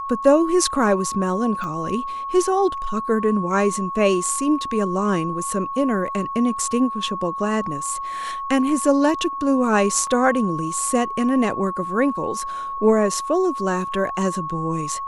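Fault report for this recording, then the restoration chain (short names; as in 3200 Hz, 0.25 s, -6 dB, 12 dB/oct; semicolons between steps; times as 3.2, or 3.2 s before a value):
tone 1100 Hz -26 dBFS
1.64 pop -20 dBFS
10.07 gap 2.6 ms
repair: de-click; notch 1100 Hz, Q 30; interpolate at 10.07, 2.6 ms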